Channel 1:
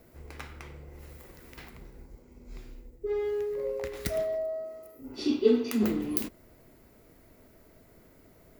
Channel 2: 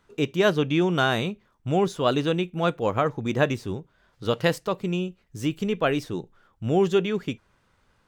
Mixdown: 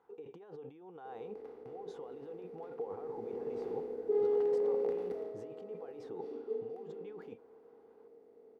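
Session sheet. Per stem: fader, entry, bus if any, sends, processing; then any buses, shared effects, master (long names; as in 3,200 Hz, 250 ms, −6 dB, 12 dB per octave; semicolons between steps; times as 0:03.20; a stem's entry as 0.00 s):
0:02.77 −11.5 dB → 0:03.33 0 dB → 0:04.83 0 dB → 0:05.36 −9.5 dB → 0:06.22 −9.5 dB → 0:06.80 −18.5 dB, 1.05 s, no send, compressor on every frequency bin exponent 0.4
−2.5 dB, 0.00 s, no send, compressor whose output falls as the input rises −34 dBFS, ratio −1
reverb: not used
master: pair of resonant band-passes 610 Hz, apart 0.72 octaves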